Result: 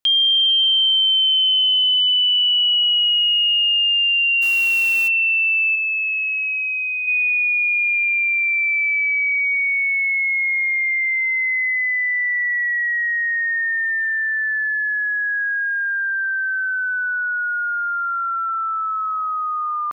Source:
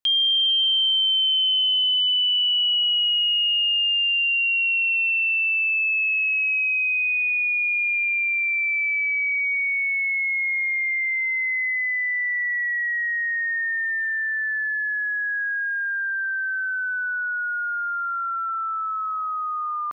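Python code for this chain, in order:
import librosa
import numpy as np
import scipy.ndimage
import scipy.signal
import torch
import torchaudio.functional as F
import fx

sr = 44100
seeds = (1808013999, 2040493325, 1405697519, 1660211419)

y = fx.dmg_noise_colour(x, sr, seeds[0], colour='white', level_db=-40.0, at=(4.41, 5.07), fade=0.02)
y = fx.lowpass(y, sr, hz=fx.line((5.75, 2600.0), (7.06, 2000.0)), slope=12, at=(5.75, 7.06), fade=0.02)
y = y * 10.0 ** (4.0 / 20.0)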